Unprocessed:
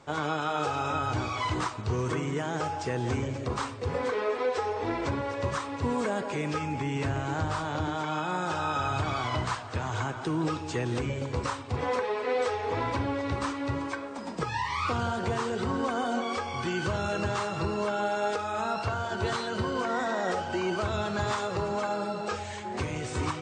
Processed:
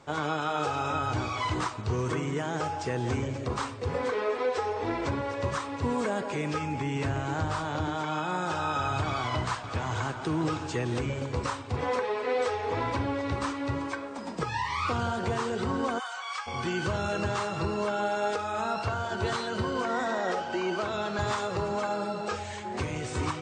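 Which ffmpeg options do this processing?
-filter_complex "[0:a]asplit=2[a][b];[b]afade=t=in:st=9.07:d=0.01,afade=t=out:st=10.19:d=0.01,aecho=0:1:560|1120|1680|2240|2800:0.298538|0.134342|0.060454|0.0272043|0.0122419[c];[a][c]amix=inputs=2:normalize=0,asplit=3[d][e][f];[d]afade=t=out:st=15.98:d=0.02[g];[e]highpass=f=1k:w=0.5412,highpass=f=1k:w=1.3066,afade=t=in:st=15.98:d=0.02,afade=t=out:st=16.46:d=0.02[h];[f]afade=t=in:st=16.46:d=0.02[i];[g][h][i]amix=inputs=3:normalize=0,asettb=1/sr,asplit=3[j][k][l];[j]atrim=end=20.184[m];[k]atrim=start=20.18:end=21.19,asetpts=PTS-STARTPTS,afade=t=in:d=0.004:c=qsin,afade=t=out:st=1.006:d=0.004:c=qsin,highpass=190,lowpass=7.2k[n];[l]atrim=start=21.186[o];[m][n]acrossfade=d=0.004:c1=hsin:c2=qsin[p];[p][o]acrossfade=d=0.004:c1=qsin:c2=hsin"

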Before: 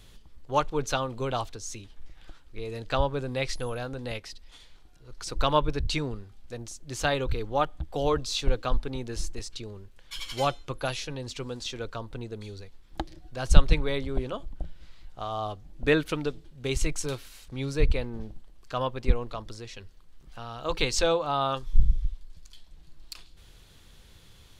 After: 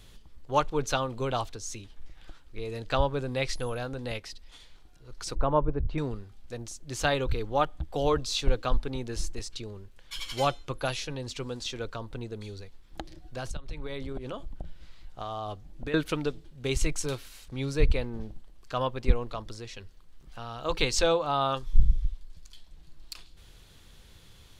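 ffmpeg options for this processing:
-filter_complex "[0:a]asettb=1/sr,asplit=3[a][b][c];[a]atrim=end=5.354[d];[b]atrim=start=5.35:end=5.98,asetpts=PTS-STARTPTS,afade=t=in:d=0.004:c=qsin,afade=t=out:st=0.626:d=0.004:c=qsin,lowpass=1k[e];[c]atrim=start=5.976[f];[d][e]acrossfade=d=0.004:c1=hsin:c2=qsin[g];[g][f]acrossfade=d=0.004:c1=qsin:c2=hsin,asettb=1/sr,asplit=3[h][i][j];[h]atrim=end=11.934[k];[i]atrim=start=11.93:end=15.94,asetpts=PTS-STARTPTS,afade=t=in:d=0.004:c=qsin,afade=t=out:st=4.006:d=0.004:c=qsin,acompressor=threshold=-30dB:ratio=16:attack=3.2:release=140:knee=1:detection=peak[l];[j]atrim=start=15.936[m];[k][l]acrossfade=d=0.004:c1=hsin:c2=qsin[n];[n][m]acrossfade=d=0.004:c1=qsin:c2=hsin"

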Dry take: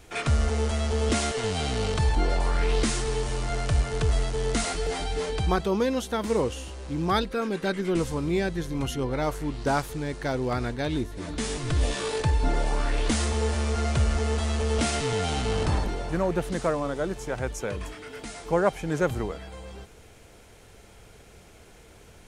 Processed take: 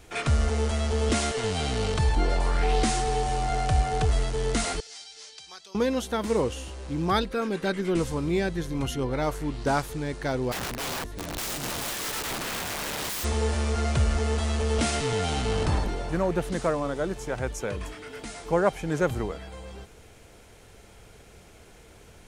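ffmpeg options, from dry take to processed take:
-filter_complex "[0:a]asettb=1/sr,asplit=3[a][b][c];[a]atrim=end=2.634[d];[b]atrim=start=2.63:end=4.05,asetpts=PTS-STARTPTS,afade=t=in:d=0.004:c=qsin,afade=t=out:st=1.416:d=0.004:c=qsin,aeval=exprs='val(0)+0.0398*sin(2*PI*750*n/s)':c=same[e];[c]atrim=start=4.046[f];[d][e]acrossfade=d=0.004:c1=hsin:c2=qsin[g];[g][f]acrossfade=d=0.004:c1=qsin:c2=hsin,asettb=1/sr,asplit=3[h][i][j];[h]atrim=end=4.804[k];[i]atrim=start=4.8:end=5.75,asetpts=PTS-STARTPTS,afade=t=in:d=0.004:c=qsin,afade=t=out:st=0.946:d=0.004:c=qsin,bandpass=f=5.5k:t=q:w=2.1[l];[j]atrim=start=5.746[m];[k][l]acrossfade=d=0.004:c1=hsin:c2=qsin[n];[n][m]acrossfade=d=0.004:c1=qsin:c2=hsin,asplit=3[o][p][q];[o]afade=t=out:st=10.51:d=0.02[r];[p]aeval=exprs='(mod(22.4*val(0)+1,2)-1)/22.4':c=same,afade=t=in:st=10.51:d=0.02,afade=t=out:st=13.23:d=0.02[s];[q]afade=t=in:st=13.23:d=0.02[t];[r][s][t]amix=inputs=3:normalize=0"

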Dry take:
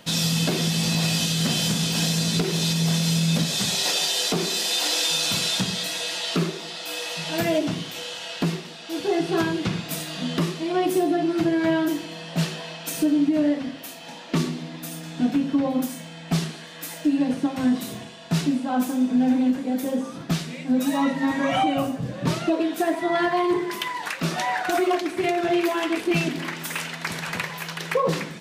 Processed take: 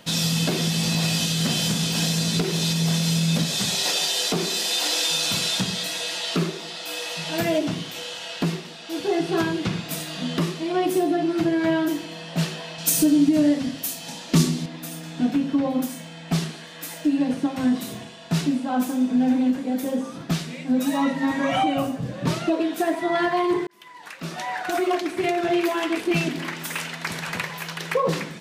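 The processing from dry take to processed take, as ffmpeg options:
-filter_complex "[0:a]asettb=1/sr,asplit=3[a][b][c];[a]atrim=end=12.784[d];[b]atrim=start=12.78:end=14.66,asetpts=PTS-STARTPTS,afade=t=in:d=0.004:c=qsin,afade=t=out:st=1.876:d=0.004:c=qsin,bass=f=250:g=8,treble=f=4k:g=12[e];[c]atrim=start=14.656[f];[d][e]acrossfade=d=0.004:c1=hsin:c2=qsin[g];[g][f]acrossfade=d=0.004:c1=qsin:c2=hsin,asplit=2[h][i];[h]atrim=end=23.67,asetpts=PTS-STARTPTS,afade=t=out:st=23.666:d=0.004:c=hsin[j];[i]atrim=start=23.67,asetpts=PTS-STARTPTS,afade=t=in:d=1.35[k];[j][k]concat=n=2:v=0:a=1"

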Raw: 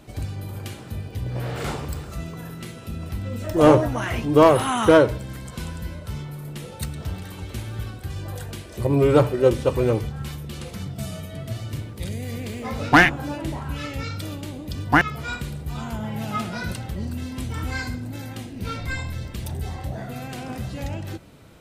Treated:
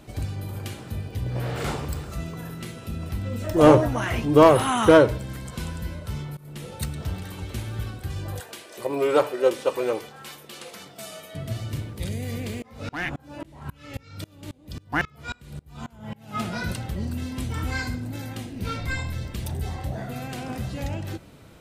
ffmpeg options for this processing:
-filter_complex "[0:a]asettb=1/sr,asplit=3[a][b][c];[a]atrim=end=8.404[d];[b]atrim=start=8.4:end=11.35,asetpts=PTS-STARTPTS,afade=t=in:d=0.004:c=qsin,afade=t=out:st=2.946:d=0.004:c=qsin,highpass=460[e];[c]atrim=start=11.346[f];[d][e]acrossfade=d=0.004:c1=hsin:c2=qsin[g];[g][f]acrossfade=d=0.004:c1=qsin:c2=hsin,asettb=1/sr,asplit=3[h][i][j];[h]atrim=end=12.624[k];[i]atrim=start=12.62:end=16.4,asetpts=PTS-STARTPTS,afade=t=in:d=0.004:c=qsin,afade=t=out:st=3.776:d=0.004:c=qsin,aeval=exprs='val(0)*pow(10,-29*if(lt(mod(-3.7*n/s,1),2*abs(-3.7)/1000),1-mod(-3.7*n/s,1)/(2*abs(-3.7)/1000),(mod(-3.7*n/s,1)-2*abs(-3.7)/1000)/(1-2*abs(-3.7)/1000))/20)':c=same[l];[j]atrim=start=16.396[m];[k][l]acrossfade=d=0.004:c1=hsin:c2=qsin[n];[n][m]acrossfade=d=0.004:c1=qsin:c2=hsin,asplit=2[o][p];[o]atrim=end=6.37,asetpts=PTS-STARTPTS,afade=t=out:st=6.366:d=0.004:c=hsin:silence=0.0944061[q];[p]atrim=start=6.37,asetpts=PTS-STARTPTS,afade=t=in:d=0.41:c=qsin:silence=0.0944061[r];[q][r]concat=n=2:v=0:a=1"

